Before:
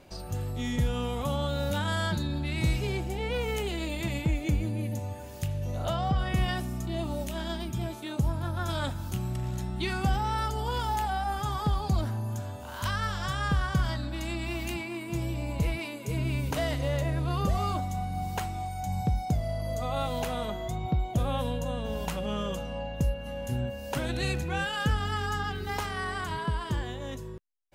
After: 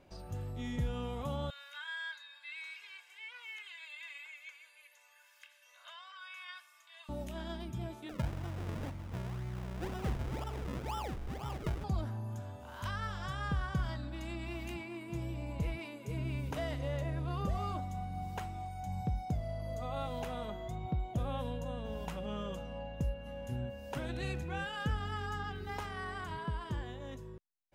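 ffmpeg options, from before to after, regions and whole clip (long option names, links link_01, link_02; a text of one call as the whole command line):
ffmpeg -i in.wav -filter_complex "[0:a]asettb=1/sr,asplit=3[link_01][link_02][link_03];[link_01]atrim=end=1.504[link_04];[link_02]atrim=start=1.5:end=7.09,asetpts=PTS-STARTPTS,afade=type=in:duration=0.004:curve=qsin,afade=type=out:start_time=5.586:duration=0.004:curve=qsin,acrossover=split=3800[link_05][link_06];[link_06]acompressor=threshold=-55dB:ratio=4:attack=1:release=60[link_07];[link_05][link_07]amix=inputs=2:normalize=0,highpass=frequency=1400:width=0.5412,highpass=frequency=1400:width=1.3066,aecho=1:1:1.9:0.84,atrim=end_sample=246519[link_08];[link_03]atrim=start=7.086[link_09];[link_04][link_08]acrossfade=duration=0.004:curve1=hsin:curve2=qsin[link_10];[link_10][link_09]acrossfade=duration=0.004:curve1=qsin:curve2=hsin,asettb=1/sr,asplit=3[link_11][link_12][link_13];[link_11]atrim=end=8.094[link_14];[link_12]atrim=start=8.09:end=11.84,asetpts=PTS-STARTPTS,afade=type=in:duration=0.004:curve=qsin,afade=type=out:start_time=3.746:duration=0.004:curve=qsin,equalizer=frequency=1800:width=1:gain=-6,bandreject=frequency=50:width_type=h:width=6,bandreject=frequency=100:width_type=h:width=6,bandreject=frequency=150:width_type=h:width=6,bandreject=frequency=200:width_type=h:width=6,bandreject=frequency=250:width_type=h:width=6,acrusher=samples=39:mix=1:aa=0.000001:lfo=1:lforange=39:lforate=2[link_15];[link_13]atrim=start=11.836[link_16];[link_14][link_15]acrossfade=duration=0.004:curve1=hsin:curve2=qsin[link_17];[link_17][link_16]acrossfade=duration=0.004:curve1=qsin:curve2=hsin,highshelf=frequency=4600:gain=-8,bandreject=frequency=4300:width=18,volume=-7.5dB" out.wav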